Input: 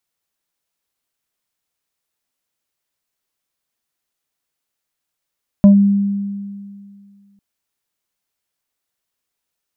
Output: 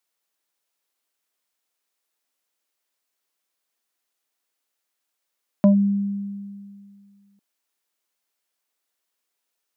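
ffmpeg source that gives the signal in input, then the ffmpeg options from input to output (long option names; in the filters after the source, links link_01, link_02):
-f lavfi -i "aevalsrc='0.631*pow(10,-3*t/2.22)*sin(2*PI*200*t+0.55*clip(1-t/0.11,0,1)*sin(2*PI*2*200*t))':duration=1.75:sample_rate=44100"
-af "highpass=280"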